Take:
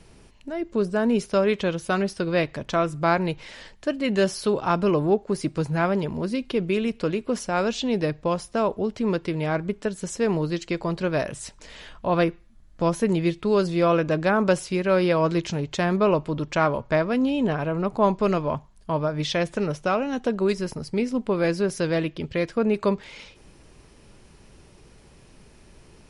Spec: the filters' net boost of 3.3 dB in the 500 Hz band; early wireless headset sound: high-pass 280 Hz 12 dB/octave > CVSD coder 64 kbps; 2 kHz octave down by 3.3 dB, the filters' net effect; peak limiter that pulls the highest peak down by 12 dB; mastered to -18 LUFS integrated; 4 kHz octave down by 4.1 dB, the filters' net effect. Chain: peaking EQ 500 Hz +5 dB; peaking EQ 2 kHz -4 dB; peaking EQ 4 kHz -4 dB; peak limiter -17.5 dBFS; high-pass 280 Hz 12 dB/octave; CVSD coder 64 kbps; trim +10.5 dB

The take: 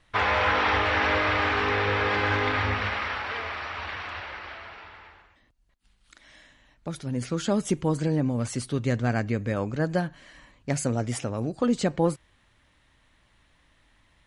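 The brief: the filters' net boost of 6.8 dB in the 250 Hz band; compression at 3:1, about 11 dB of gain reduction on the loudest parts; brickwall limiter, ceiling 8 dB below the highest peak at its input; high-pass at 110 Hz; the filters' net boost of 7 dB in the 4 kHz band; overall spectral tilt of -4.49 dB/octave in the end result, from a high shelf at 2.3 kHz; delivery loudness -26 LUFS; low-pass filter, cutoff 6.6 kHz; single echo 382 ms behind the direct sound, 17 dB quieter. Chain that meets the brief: high-pass 110 Hz; low-pass 6.6 kHz; peaking EQ 250 Hz +8.5 dB; treble shelf 2.3 kHz +4 dB; peaking EQ 4 kHz +6 dB; compression 3:1, threshold -27 dBFS; peak limiter -21 dBFS; delay 382 ms -17 dB; trim +5 dB

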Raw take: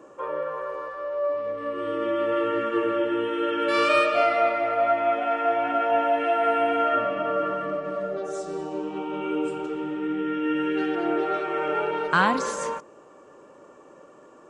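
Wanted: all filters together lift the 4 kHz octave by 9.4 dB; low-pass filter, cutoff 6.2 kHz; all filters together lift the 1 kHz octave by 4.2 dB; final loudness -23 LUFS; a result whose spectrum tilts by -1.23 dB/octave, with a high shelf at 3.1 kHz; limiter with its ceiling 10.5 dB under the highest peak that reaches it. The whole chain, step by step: low-pass 6.2 kHz; peaking EQ 1 kHz +4.5 dB; treble shelf 3.1 kHz +8.5 dB; peaking EQ 4 kHz +7 dB; trim +0.5 dB; peak limiter -12.5 dBFS

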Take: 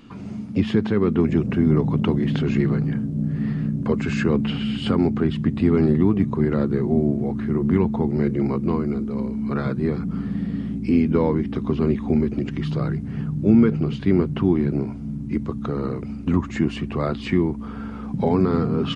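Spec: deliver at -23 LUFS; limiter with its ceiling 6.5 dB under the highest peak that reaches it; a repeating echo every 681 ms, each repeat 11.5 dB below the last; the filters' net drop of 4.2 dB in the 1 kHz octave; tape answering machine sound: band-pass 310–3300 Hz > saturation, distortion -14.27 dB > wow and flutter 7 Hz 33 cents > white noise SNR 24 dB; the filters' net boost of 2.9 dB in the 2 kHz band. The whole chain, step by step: peaking EQ 1 kHz -7.5 dB; peaking EQ 2 kHz +6.5 dB; peak limiter -11.5 dBFS; band-pass 310–3300 Hz; feedback delay 681 ms, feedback 27%, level -11.5 dB; saturation -22 dBFS; wow and flutter 7 Hz 33 cents; white noise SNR 24 dB; trim +7.5 dB

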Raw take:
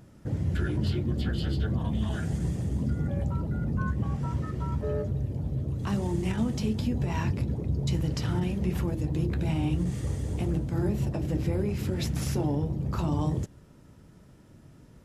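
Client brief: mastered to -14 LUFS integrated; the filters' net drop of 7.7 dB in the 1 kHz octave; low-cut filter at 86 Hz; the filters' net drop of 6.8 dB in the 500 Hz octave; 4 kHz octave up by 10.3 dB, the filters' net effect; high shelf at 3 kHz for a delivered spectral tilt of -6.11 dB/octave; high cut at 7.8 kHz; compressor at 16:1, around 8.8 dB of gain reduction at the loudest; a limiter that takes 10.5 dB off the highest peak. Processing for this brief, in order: high-pass 86 Hz; low-pass 7.8 kHz; peaking EQ 500 Hz -8.5 dB; peaking EQ 1 kHz -8.5 dB; treble shelf 3 kHz +6.5 dB; peaking EQ 4 kHz +9 dB; compression 16:1, threshold -33 dBFS; trim +26 dB; peak limiter -5.5 dBFS

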